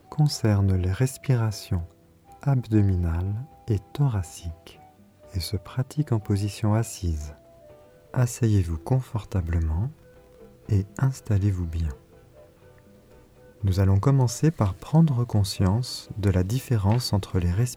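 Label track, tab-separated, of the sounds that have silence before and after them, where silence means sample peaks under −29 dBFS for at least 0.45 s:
2.430000	4.670000	sound
5.350000	7.290000	sound
8.140000	9.880000	sound
10.690000	11.910000	sound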